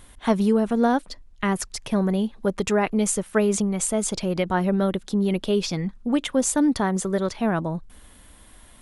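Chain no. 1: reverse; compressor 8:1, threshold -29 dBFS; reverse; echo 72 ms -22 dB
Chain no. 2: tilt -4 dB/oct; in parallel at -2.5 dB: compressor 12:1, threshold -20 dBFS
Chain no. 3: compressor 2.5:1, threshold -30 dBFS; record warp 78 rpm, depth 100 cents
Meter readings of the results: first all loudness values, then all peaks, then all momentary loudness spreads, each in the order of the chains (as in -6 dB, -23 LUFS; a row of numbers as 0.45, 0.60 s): -33.5, -14.5, -31.0 LUFS; -17.0, -1.5, -15.0 dBFS; 7, 7, 9 LU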